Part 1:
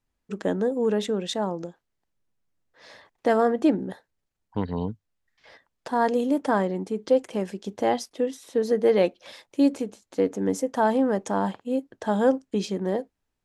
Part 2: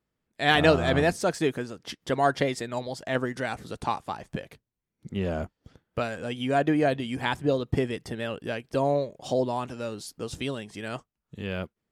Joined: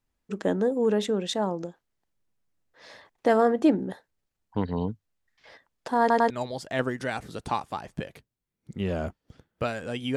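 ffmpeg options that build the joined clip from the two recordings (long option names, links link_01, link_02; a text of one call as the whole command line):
ffmpeg -i cue0.wav -i cue1.wav -filter_complex "[0:a]apad=whole_dur=10.16,atrim=end=10.16,asplit=3[link_01][link_02][link_03];[link_01]atrim=end=6.102[link_04];[link_02]atrim=start=5.998:end=6.102[link_05];[link_03]atrim=start=5.998:end=6.102[link_06];[1:a]atrim=start=2.658:end=6.52[link_07];[link_04][link_05]acrossfade=duration=0.004:curve1=hsin:curve2=hsin[link_08];[link_08][link_06]acrossfade=duration=0.004:curve1=hsin:curve2=hsin[link_09];[link_09][link_07]acrossfade=duration=0.004:curve1=hsin:curve2=hsin" out.wav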